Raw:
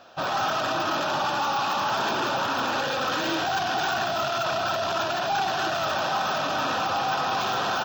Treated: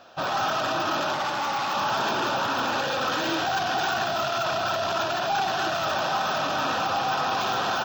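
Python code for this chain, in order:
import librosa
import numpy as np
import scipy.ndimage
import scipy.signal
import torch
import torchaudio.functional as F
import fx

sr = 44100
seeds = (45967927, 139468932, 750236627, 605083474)

y = fx.echo_heads(x, sr, ms=274, heads='all three', feedback_pct=53, wet_db=-22)
y = fx.transformer_sat(y, sr, knee_hz=1400.0, at=(1.13, 1.75))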